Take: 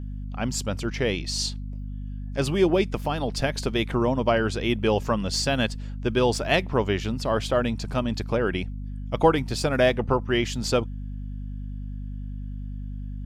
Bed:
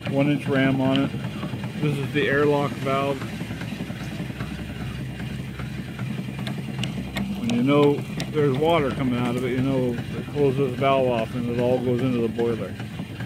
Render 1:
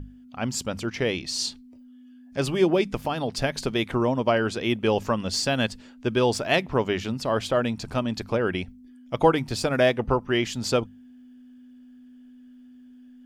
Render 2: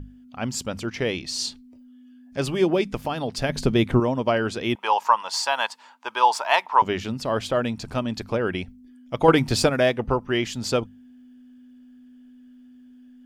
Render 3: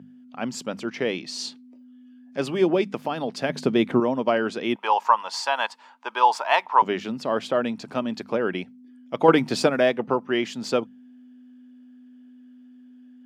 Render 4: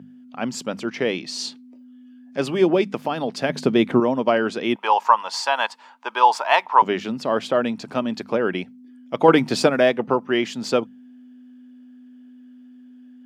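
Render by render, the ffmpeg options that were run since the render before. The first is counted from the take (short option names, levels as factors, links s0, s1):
-af "bandreject=f=50:t=h:w=6,bandreject=f=100:t=h:w=6,bandreject=f=150:t=h:w=6,bandreject=f=200:t=h:w=6"
-filter_complex "[0:a]asettb=1/sr,asplit=3[s0][s1][s2];[s0]atrim=end=3.494[s3];[s1]atrim=start=3.49:end=4,asetpts=PTS-STARTPTS,afade=t=in:d=0.004:c=qsin,afade=t=out:st=0.506:d=0.004:c=qsin,lowshelf=f=390:g=10.5[s4];[s2]atrim=start=3.996[s5];[s3][s4]acrossfade=d=0.004:c1=hsin:c2=qsin[s6];[s6][s5]acrossfade=d=0.004:c1=qsin:c2=hsin,asettb=1/sr,asplit=3[s7][s8][s9];[s7]atrim=end=4.754[s10];[s8]atrim=start=4.75:end=6.82,asetpts=PTS-STARTPTS,afade=t=in:d=0.004:c=qsin,afade=t=out:st=2.066:d=0.004:c=qsin,highpass=f=930:t=q:w=7.8[s11];[s9]atrim=start=6.816[s12];[s10][s11]acrossfade=d=0.004:c1=hsin:c2=qsin[s13];[s13][s12]acrossfade=d=0.004:c1=qsin:c2=hsin,asettb=1/sr,asplit=3[s14][s15][s16];[s14]atrim=end=9.284[s17];[s15]atrim=start=9.28:end=9.7,asetpts=PTS-STARTPTS,afade=t=in:d=0.004:c=qsin,afade=t=out:st=0.416:d=0.004:c=qsin,acontrast=69[s18];[s16]atrim=start=9.696[s19];[s17][s18]acrossfade=d=0.004:c1=hsin:c2=qsin[s20];[s20][s19]acrossfade=d=0.004:c1=qsin:c2=hsin"
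-af "highpass=f=170:w=0.5412,highpass=f=170:w=1.3066,aemphasis=mode=reproduction:type=cd"
-af "volume=1.41,alimiter=limit=0.891:level=0:latency=1"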